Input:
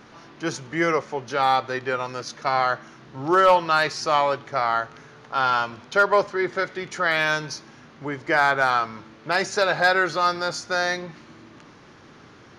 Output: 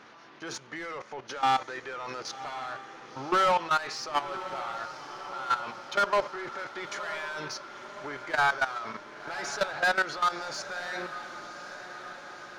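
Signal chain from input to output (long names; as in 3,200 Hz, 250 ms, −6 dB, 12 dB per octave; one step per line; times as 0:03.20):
mid-hump overdrive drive 18 dB, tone 3,900 Hz, clips at −8.5 dBFS
output level in coarse steps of 15 dB
feedback delay with all-pass diffusion 1,057 ms, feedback 63%, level −12.5 dB
level −7.5 dB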